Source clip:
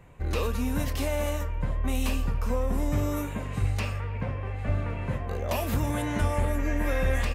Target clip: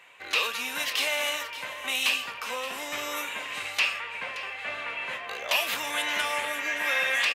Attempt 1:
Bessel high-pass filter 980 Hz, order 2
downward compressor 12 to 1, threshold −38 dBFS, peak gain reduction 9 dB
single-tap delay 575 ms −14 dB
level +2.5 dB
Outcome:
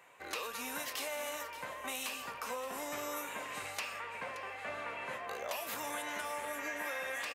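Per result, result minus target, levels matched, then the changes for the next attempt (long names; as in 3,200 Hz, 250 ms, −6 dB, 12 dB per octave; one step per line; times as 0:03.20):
downward compressor: peak gain reduction +9 dB; 4,000 Hz band −4.5 dB
remove: downward compressor 12 to 1, threshold −38 dBFS, peak gain reduction 9 dB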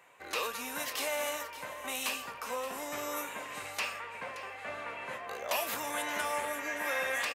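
4,000 Hz band −4.0 dB
add after Bessel high-pass filter: parametric band 3,000 Hz +12.5 dB 1.7 octaves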